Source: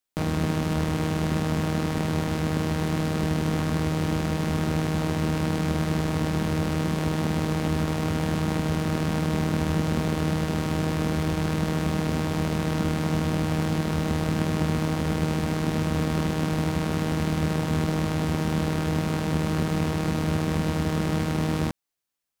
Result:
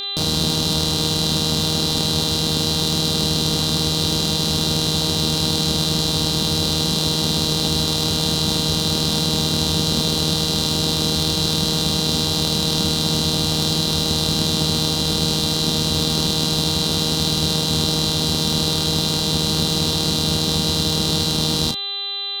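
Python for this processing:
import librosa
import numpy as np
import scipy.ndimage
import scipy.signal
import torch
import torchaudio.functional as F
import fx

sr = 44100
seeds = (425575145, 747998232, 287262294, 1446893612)

y = fx.dmg_buzz(x, sr, base_hz=400.0, harmonics=10, level_db=-39.0, tilt_db=-2, odd_only=False)
y = fx.high_shelf_res(y, sr, hz=2900.0, db=11.5, q=3.0)
y = fx.doubler(y, sr, ms=34.0, db=-8.0)
y = F.gain(torch.from_numpy(y), 2.5).numpy()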